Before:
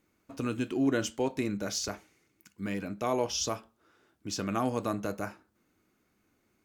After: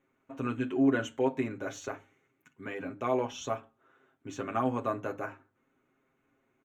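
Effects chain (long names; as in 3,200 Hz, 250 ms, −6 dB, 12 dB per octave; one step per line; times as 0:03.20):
moving average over 9 samples
low-shelf EQ 190 Hz −7.5 dB
mains-hum notches 50/100/150/200/250/300 Hz
comb filter 7.5 ms, depth 85%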